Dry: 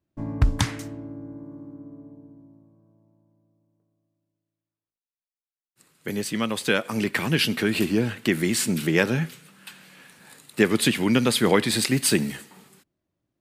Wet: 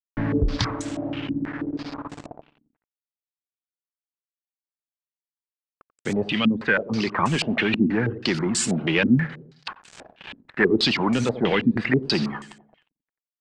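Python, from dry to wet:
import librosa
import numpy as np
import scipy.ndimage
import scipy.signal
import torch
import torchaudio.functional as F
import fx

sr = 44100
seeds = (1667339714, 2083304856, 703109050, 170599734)

p1 = fx.dereverb_blind(x, sr, rt60_s=0.9)
p2 = fx.over_compress(p1, sr, threshold_db=-33.0, ratio=-1.0)
p3 = p1 + (p2 * librosa.db_to_amplitude(-0.5))
p4 = 10.0 ** (-15.0 / 20.0) * np.tanh(p3 / 10.0 ** (-15.0 / 20.0))
p5 = fx.quant_dither(p4, sr, seeds[0], bits=6, dither='none')
p6 = fx.air_absorb(p5, sr, metres=87.0)
p7 = p6 + fx.echo_feedback(p6, sr, ms=89, feedback_pct=50, wet_db=-15.5, dry=0)
y = fx.filter_held_lowpass(p7, sr, hz=6.2, low_hz=250.0, high_hz=7900.0)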